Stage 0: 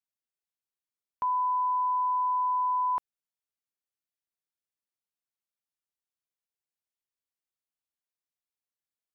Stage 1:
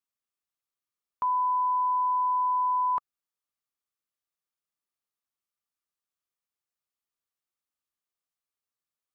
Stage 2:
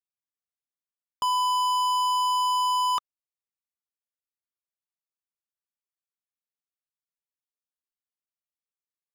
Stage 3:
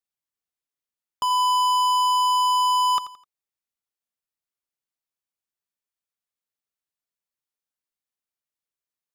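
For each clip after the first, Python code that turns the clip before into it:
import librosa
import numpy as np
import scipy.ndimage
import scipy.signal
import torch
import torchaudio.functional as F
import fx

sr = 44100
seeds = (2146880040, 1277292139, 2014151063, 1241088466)

y1 = fx.peak_eq(x, sr, hz=1200.0, db=9.0, octaves=0.22)
y2 = fx.leveller(y1, sr, passes=5)
y2 = y2 * librosa.db_to_amplitude(-2.0)
y3 = fx.echo_feedback(y2, sr, ms=85, feedback_pct=36, wet_db=-15.0)
y3 = y3 * librosa.db_to_amplitude(2.0)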